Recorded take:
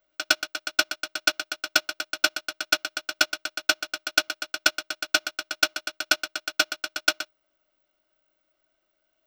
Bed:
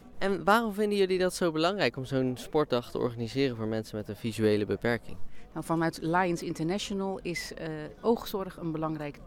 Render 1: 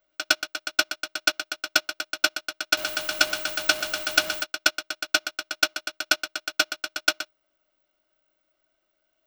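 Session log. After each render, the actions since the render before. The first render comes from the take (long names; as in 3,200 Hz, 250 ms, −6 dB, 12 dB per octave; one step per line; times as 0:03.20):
0:02.77–0:04.44: converter with a step at zero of −28 dBFS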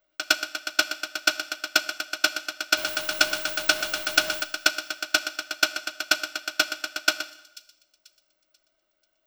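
delay with a high-pass on its return 488 ms, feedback 34%, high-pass 4,100 Hz, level −18.5 dB
four-comb reverb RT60 0.88 s, combs from 26 ms, DRR 14 dB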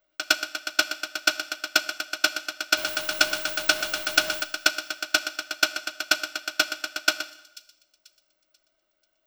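no processing that can be heard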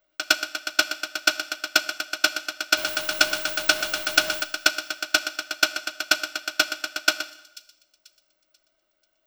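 level +1.5 dB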